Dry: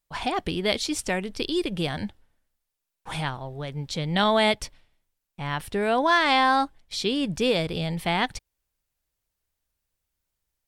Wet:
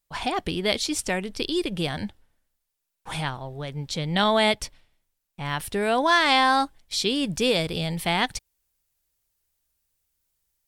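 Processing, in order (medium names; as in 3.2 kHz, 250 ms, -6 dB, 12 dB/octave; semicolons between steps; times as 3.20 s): treble shelf 4.5 kHz +3.5 dB, from 5.45 s +8.5 dB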